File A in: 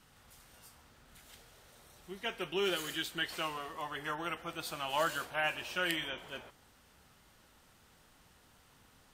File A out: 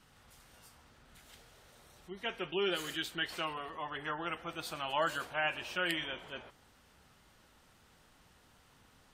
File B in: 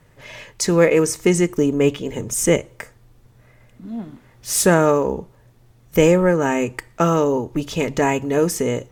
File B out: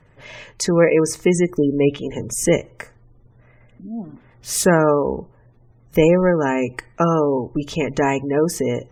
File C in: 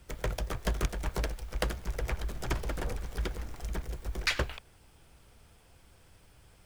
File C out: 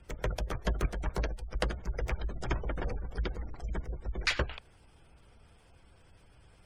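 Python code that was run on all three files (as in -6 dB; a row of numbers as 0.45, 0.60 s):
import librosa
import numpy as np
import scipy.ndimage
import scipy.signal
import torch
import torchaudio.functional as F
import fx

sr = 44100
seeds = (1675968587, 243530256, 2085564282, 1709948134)

y = fx.spec_gate(x, sr, threshold_db=-30, keep='strong')
y = fx.high_shelf(y, sr, hz=9400.0, db=-5.5)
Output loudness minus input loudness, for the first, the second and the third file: -0.5, 0.0, -0.5 LU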